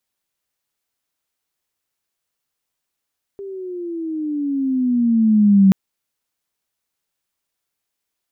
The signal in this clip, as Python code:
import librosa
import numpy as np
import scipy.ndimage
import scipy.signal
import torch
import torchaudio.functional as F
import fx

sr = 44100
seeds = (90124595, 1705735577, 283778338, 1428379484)

y = fx.chirp(sr, length_s=2.33, from_hz=400.0, to_hz=190.0, law='logarithmic', from_db=-28.5, to_db=-7.0)